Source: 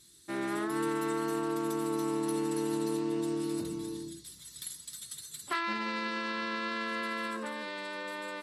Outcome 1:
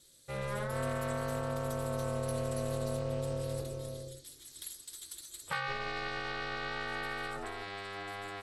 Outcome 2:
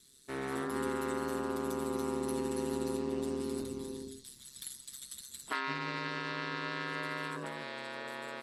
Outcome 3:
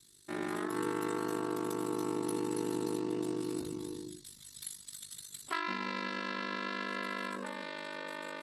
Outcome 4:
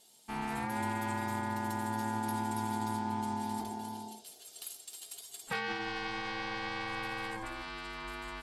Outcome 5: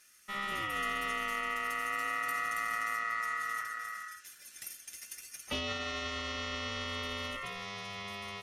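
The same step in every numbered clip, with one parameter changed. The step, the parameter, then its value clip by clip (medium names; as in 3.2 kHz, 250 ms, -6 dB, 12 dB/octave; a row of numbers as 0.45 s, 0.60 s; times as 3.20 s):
ring modulator, frequency: 200 Hz, 67 Hz, 25 Hz, 550 Hz, 1.6 kHz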